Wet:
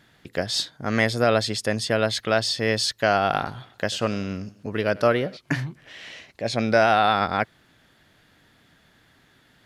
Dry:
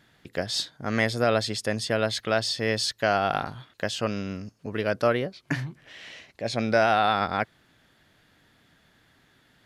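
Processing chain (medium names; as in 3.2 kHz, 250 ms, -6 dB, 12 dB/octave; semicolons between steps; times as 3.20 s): 3.26–5.37 s: modulated delay 93 ms, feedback 52%, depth 100 cents, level -22 dB; trim +3 dB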